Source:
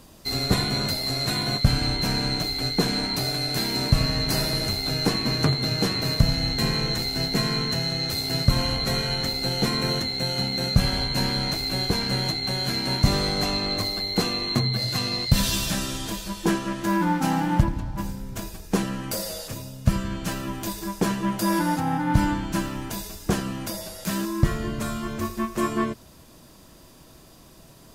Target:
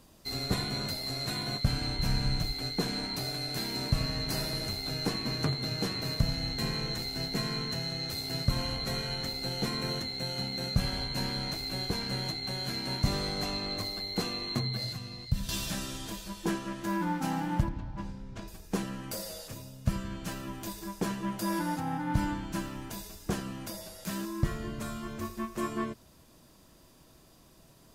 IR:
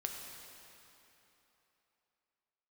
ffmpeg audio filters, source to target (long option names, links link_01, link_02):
-filter_complex "[0:a]asplit=3[link_01][link_02][link_03];[link_01]afade=type=out:start_time=1.97:duration=0.02[link_04];[link_02]asubboost=boost=9:cutoff=140,afade=type=in:start_time=1.97:duration=0.02,afade=type=out:start_time=2.51:duration=0.02[link_05];[link_03]afade=type=in:start_time=2.51:duration=0.02[link_06];[link_04][link_05][link_06]amix=inputs=3:normalize=0,asettb=1/sr,asplit=3[link_07][link_08][link_09];[link_07]atrim=end=14.924[link_10];[link_08]atrim=start=14.92:end=15.49,asetpts=PTS-STARTPTS,afade=type=in:duration=0.004:curve=qsin,afade=type=out:start_time=0.566:duration=0.004:curve=qsin,acrossover=split=180[link_11][link_12];[link_12]acompressor=threshold=-36dB:ratio=4[link_13];[link_11][link_13]amix=inputs=2:normalize=0[link_14];[link_09]atrim=start=15.486[link_15];[link_10][link_14]acrossfade=duration=0.004:curve1=hsin:curve2=qsin[link_16];[link_16][link_15]acrossfade=duration=0.004:curve1=qsin:curve2=hsin,asettb=1/sr,asplit=3[link_17][link_18][link_19];[link_17]atrim=end=17.694[link_20];[link_18]atrim=start=17.69:end=18.48,asetpts=PTS-STARTPTS,afade=type=in:duration=0.004:curve=qsin,afade=type=out:start_time=0.786:duration=0.004:curve=qsin,lowpass=4500[link_21];[link_19]atrim=start=18.476[link_22];[link_20][link_21]acrossfade=duration=0.004:curve1=hsin:curve2=qsin[link_23];[link_23][link_22]acrossfade=duration=0.004:curve1=qsin:curve2=hsin,volume=-8.5dB"